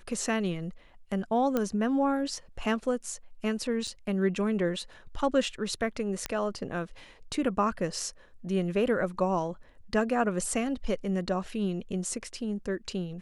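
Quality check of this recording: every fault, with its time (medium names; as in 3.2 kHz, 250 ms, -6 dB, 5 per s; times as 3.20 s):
1.57 s: pop -15 dBFS
3.87–3.88 s: dropout 5.6 ms
6.26 s: pop -15 dBFS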